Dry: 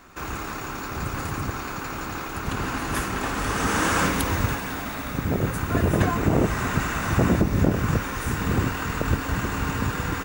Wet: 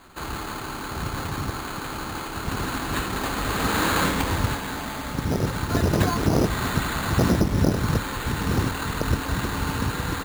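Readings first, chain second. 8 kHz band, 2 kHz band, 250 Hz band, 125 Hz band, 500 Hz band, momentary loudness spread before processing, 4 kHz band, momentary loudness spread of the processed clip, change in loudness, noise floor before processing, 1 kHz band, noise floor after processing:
0.0 dB, -1.0 dB, 0.0 dB, 0.0 dB, 0.0 dB, 10 LU, +3.5 dB, 10 LU, 0.0 dB, -33 dBFS, 0.0 dB, -33 dBFS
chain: sample-and-hold 8×

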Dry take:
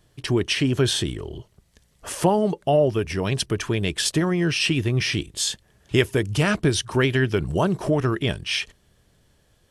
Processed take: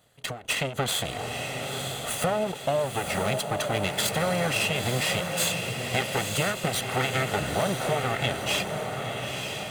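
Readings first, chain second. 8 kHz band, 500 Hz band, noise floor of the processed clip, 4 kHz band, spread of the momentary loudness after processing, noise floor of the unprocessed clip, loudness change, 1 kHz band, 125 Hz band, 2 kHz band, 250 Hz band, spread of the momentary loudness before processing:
-0.5 dB, -4.5 dB, -39 dBFS, -2.5 dB, 6 LU, -62 dBFS, -4.5 dB, +1.0 dB, -7.5 dB, -1.0 dB, -9.5 dB, 6 LU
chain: minimum comb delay 1.5 ms; HPF 310 Hz 6 dB/oct; bell 5400 Hz -13 dB 0.21 oct; compressor, threshold -26 dBFS, peak gain reduction 10 dB; diffused feedback echo 0.948 s, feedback 52%, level -4.5 dB; ending taper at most 140 dB/s; gain +3 dB

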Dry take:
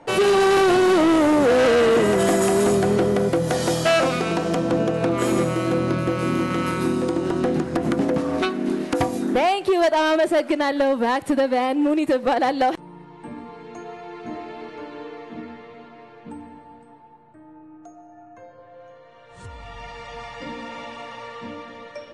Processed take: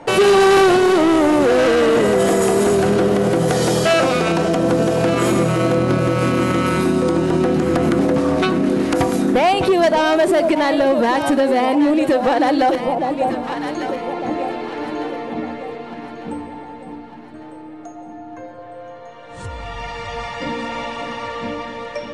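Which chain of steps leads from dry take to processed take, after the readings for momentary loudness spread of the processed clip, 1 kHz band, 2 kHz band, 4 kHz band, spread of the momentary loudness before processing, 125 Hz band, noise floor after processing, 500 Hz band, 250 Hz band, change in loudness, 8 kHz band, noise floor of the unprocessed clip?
19 LU, +4.5 dB, +4.0 dB, +4.5 dB, 21 LU, +5.5 dB, -36 dBFS, +4.5 dB, +4.5 dB, +3.0 dB, +4.0 dB, -47 dBFS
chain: echo with dull and thin repeats by turns 0.601 s, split 890 Hz, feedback 64%, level -8 dB; limiter -17.5 dBFS, peak gain reduction 8 dB; gain +8.5 dB

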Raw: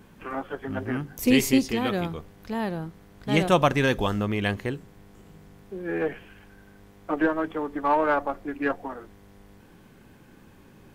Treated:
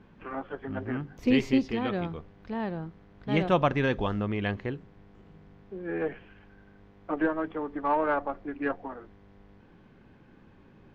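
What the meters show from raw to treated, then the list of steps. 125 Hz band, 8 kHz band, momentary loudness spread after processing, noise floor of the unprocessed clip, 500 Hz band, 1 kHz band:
-3.0 dB, under -20 dB, 17 LU, -53 dBFS, -3.5 dB, -4.0 dB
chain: air absorption 220 m; gain -3 dB

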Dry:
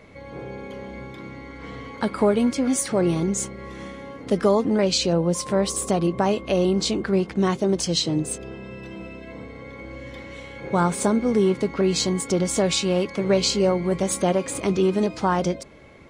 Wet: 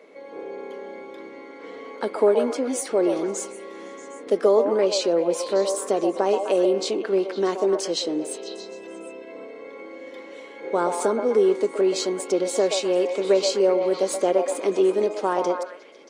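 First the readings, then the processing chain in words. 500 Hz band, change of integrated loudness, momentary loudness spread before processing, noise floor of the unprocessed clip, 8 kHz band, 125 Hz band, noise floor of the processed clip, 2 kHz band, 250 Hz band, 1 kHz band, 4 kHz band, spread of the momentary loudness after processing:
+3.0 dB, -0.5 dB, 18 LU, -40 dBFS, -4.5 dB, under -15 dB, -42 dBFS, -3.5 dB, -5.0 dB, -0.5 dB, -4.0 dB, 19 LU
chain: HPF 270 Hz 24 dB/oct; bell 450 Hz +8.5 dB 1 oct; on a send: delay with a stepping band-pass 0.126 s, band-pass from 730 Hz, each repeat 0.7 oct, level -3 dB; on the sum: gain -4.5 dB

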